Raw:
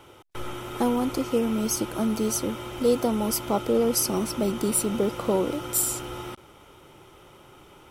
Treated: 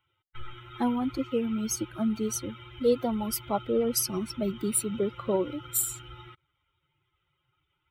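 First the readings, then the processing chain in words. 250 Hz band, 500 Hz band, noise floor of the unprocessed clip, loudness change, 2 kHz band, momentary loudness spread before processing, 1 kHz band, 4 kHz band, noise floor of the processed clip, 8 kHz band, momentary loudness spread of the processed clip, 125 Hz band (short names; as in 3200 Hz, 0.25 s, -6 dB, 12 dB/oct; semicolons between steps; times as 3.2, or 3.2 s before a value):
-3.5 dB, -4.0 dB, -52 dBFS, -3.5 dB, -6.5 dB, 13 LU, -5.0 dB, -5.0 dB, -79 dBFS, -3.5 dB, 15 LU, -4.5 dB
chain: per-bin expansion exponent 2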